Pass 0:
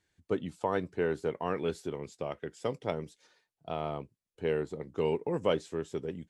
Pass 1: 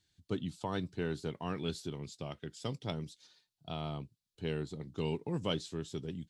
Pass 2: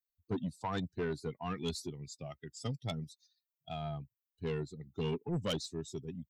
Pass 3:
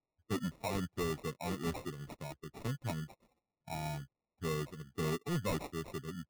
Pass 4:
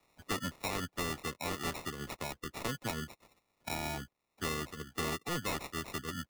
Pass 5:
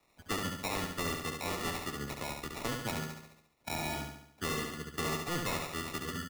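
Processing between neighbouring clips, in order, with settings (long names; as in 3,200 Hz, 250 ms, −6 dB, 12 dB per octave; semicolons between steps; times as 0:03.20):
octave-band graphic EQ 125/500/1,000/2,000/4,000 Hz +4/−10/−4/−7/+9 dB
spectral dynamics exaggerated over time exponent 2; soft clipping −36.5 dBFS, distortion −11 dB; level +7.5 dB
decimation without filtering 28×
ceiling on every frequency bin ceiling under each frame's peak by 15 dB; multiband upward and downward compressor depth 70%
repeating echo 70 ms, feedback 51%, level −4.5 dB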